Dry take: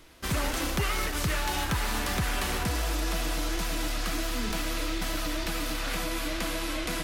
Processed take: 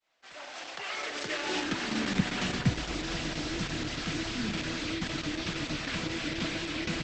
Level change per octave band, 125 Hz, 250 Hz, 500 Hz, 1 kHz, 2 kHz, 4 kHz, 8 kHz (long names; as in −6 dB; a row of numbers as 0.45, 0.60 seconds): −2.0, +1.0, −3.0, −5.5, −1.5, −1.0, −7.0 decibels